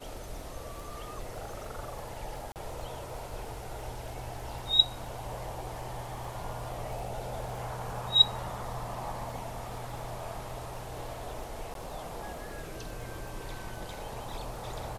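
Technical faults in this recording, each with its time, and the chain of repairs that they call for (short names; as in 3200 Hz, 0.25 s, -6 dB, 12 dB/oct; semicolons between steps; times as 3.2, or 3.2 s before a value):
crackle 25/s -41 dBFS
2.52–2.56 gap 38 ms
11.74–11.75 gap 12 ms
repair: de-click; interpolate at 2.52, 38 ms; interpolate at 11.74, 12 ms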